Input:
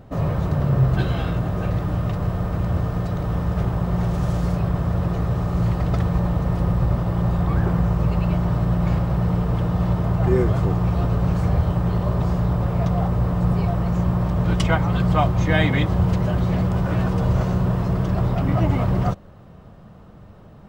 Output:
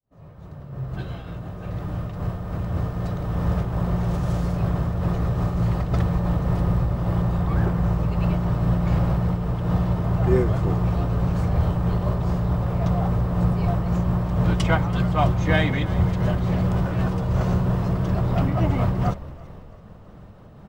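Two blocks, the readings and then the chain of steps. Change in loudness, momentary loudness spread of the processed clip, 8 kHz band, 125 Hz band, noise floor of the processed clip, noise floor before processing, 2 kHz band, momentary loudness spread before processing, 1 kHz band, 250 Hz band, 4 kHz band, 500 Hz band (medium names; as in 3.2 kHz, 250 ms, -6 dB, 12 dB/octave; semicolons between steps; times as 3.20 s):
-2.0 dB, 9 LU, no reading, -2.0 dB, -43 dBFS, -44 dBFS, -1.5 dB, 5 LU, -2.0 dB, -2.0 dB, -2.5 dB, -1.5 dB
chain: fade-in on the opening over 3.67 s; in parallel at -9 dB: saturation -21 dBFS, distortion -10 dB; on the sum: frequency-shifting echo 331 ms, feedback 51%, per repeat -46 Hz, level -16.5 dB; random flutter of the level, depth 60%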